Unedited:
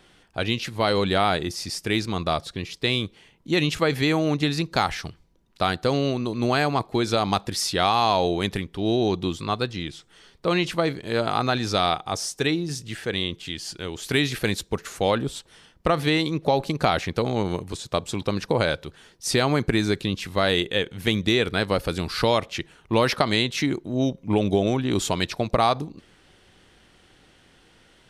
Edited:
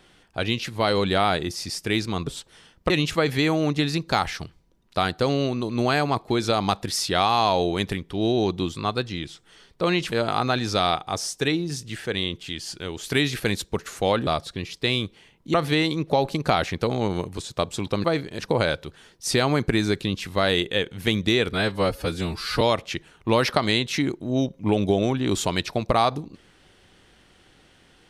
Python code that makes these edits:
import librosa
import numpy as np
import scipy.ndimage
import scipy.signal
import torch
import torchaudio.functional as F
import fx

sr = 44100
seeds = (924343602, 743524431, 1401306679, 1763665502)

y = fx.edit(x, sr, fx.swap(start_s=2.27, length_s=1.27, other_s=15.26, other_length_s=0.63),
    fx.move(start_s=10.76, length_s=0.35, to_s=18.39),
    fx.stretch_span(start_s=21.53, length_s=0.72, factor=1.5), tone=tone)